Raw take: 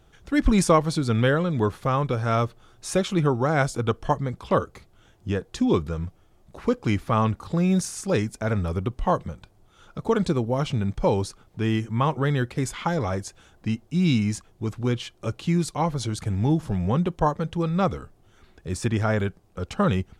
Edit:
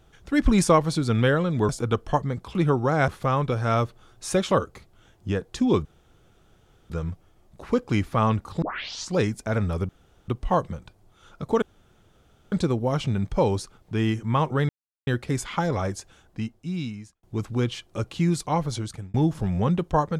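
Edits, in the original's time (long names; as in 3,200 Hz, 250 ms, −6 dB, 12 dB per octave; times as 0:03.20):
0:01.69–0:03.12: swap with 0:03.65–0:04.51
0:05.85: splice in room tone 1.05 s
0:07.57: tape start 0.55 s
0:08.84: splice in room tone 0.39 s
0:10.18: splice in room tone 0.90 s
0:12.35: splice in silence 0.38 s
0:13.23–0:14.51: fade out
0:15.83–0:16.42: fade out equal-power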